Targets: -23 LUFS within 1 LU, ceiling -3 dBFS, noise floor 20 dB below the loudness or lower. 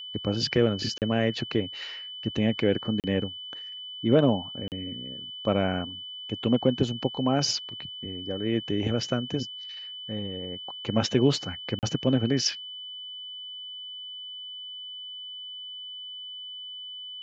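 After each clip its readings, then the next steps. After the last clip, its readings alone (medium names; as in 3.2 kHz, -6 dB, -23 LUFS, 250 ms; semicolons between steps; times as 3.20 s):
dropouts 4; longest dropout 38 ms; steady tone 3 kHz; tone level -37 dBFS; loudness -29.0 LUFS; peak level -8.0 dBFS; loudness target -23.0 LUFS
-> interpolate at 0.98/3.00/4.68/11.79 s, 38 ms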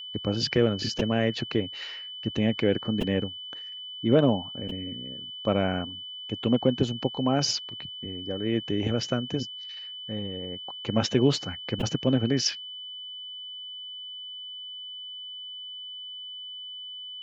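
dropouts 0; steady tone 3 kHz; tone level -37 dBFS
-> band-stop 3 kHz, Q 30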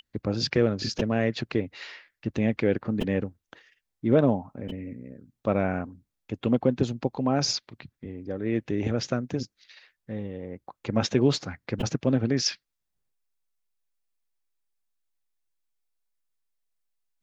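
steady tone not found; loudness -27.5 LUFS; peak level -8.0 dBFS; loudness target -23.0 LUFS
-> trim +4.5 dB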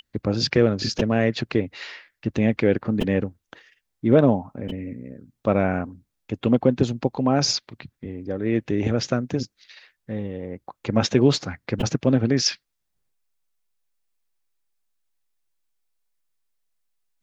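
loudness -23.0 LUFS; peak level -3.5 dBFS; noise floor -78 dBFS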